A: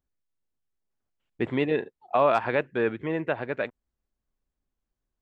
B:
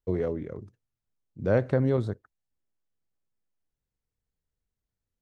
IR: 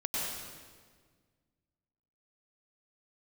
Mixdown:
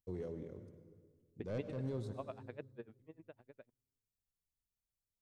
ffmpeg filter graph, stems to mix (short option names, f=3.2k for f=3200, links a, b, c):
-filter_complex "[0:a]aeval=exprs='val(0)*pow(10,-33*(0.5-0.5*cos(2*PI*10*n/s))/20)':c=same,volume=-6.5dB,afade=t=out:st=1.33:d=0.35:silence=0.421697,afade=t=out:st=2.61:d=0.59:silence=0.421697,asplit=2[a][b];[1:a]highshelf=f=2.2k:g=10.5,asoftclip=type=tanh:threshold=-19dB,volume=-13.5dB,asplit=2[c][d];[d]volume=-12.5dB[e];[b]apad=whole_len=229913[f];[c][f]sidechaincompress=threshold=-46dB:ratio=8:attack=8:release=105[g];[2:a]atrim=start_sample=2205[h];[e][h]afir=irnorm=-1:irlink=0[i];[a][g][i]amix=inputs=3:normalize=0,equalizer=f=1.6k:w=0.5:g=-9.5"